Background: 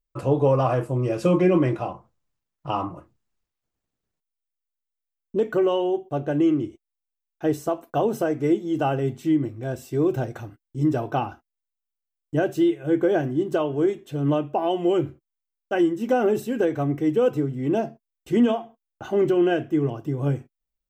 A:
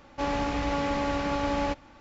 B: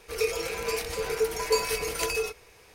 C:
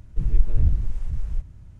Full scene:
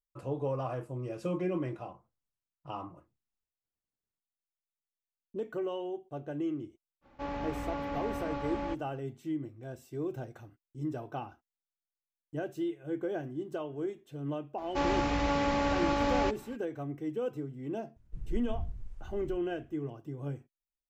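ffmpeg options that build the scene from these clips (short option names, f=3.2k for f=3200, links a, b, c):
-filter_complex "[1:a]asplit=2[a][b];[0:a]volume=-14dB[c];[a]aemphasis=mode=reproduction:type=75kf,atrim=end=2,asetpts=PTS-STARTPTS,volume=-8dB,afade=t=in:d=0.05,afade=t=out:st=1.95:d=0.05,adelay=7010[d];[b]atrim=end=2,asetpts=PTS-STARTPTS,volume=-1dB,afade=t=in:d=0.02,afade=t=out:st=1.98:d=0.02,adelay=14570[e];[3:a]atrim=end=1.79,asetpts=PTS-STARTPTS,volume=-18dB,afade=t=in:d=0.004:c=hsin,afade=t=out:st=1.786:d=0.004:c=hsin,adelay=792036S[f];[c][d][e][f]amix=inputs=4:normalize=0"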